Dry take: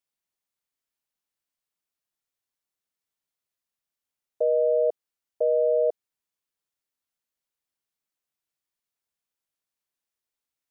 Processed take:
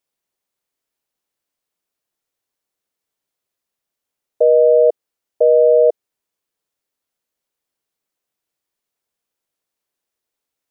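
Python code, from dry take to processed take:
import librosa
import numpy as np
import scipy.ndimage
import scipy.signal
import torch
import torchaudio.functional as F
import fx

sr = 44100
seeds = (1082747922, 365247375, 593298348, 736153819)

y = fx.peak_eq(x, sr, hz=450.0, db=6.0, octaves=1.6)
y = F.gain(torch.from_numpy(y), 5.5).numpy()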